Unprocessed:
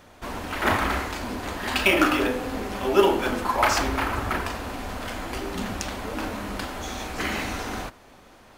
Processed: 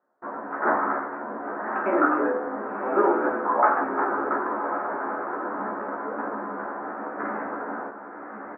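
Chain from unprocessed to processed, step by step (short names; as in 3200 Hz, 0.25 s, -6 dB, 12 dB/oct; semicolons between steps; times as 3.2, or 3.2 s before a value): Bessel high-pass 330 Hz, order 4; gate with hold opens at -39 dBFS; steep low-pass 1600 Hz 48 dB/oct; doubler 14 ms -2 dB; diffused feedback echo 1.13 s, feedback 50%, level -7.5 dB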